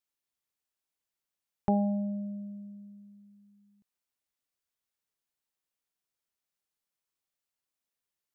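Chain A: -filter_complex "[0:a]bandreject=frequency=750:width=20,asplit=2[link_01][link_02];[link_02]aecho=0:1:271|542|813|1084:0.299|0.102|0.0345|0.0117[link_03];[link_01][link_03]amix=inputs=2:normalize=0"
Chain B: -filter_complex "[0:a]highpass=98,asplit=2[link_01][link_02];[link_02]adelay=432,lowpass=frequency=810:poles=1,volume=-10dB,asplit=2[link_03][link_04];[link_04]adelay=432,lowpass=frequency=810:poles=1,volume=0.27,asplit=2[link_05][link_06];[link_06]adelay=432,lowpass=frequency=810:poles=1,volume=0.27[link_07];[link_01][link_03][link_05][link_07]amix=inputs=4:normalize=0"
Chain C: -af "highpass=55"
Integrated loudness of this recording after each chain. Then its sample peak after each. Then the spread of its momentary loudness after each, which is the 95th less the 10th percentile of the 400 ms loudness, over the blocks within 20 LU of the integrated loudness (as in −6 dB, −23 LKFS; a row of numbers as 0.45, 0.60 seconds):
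−31.5, −32.5, −32.5 LKFS; −16.5, −14.5, −15.5 dBFS; 19, 20, 20 LU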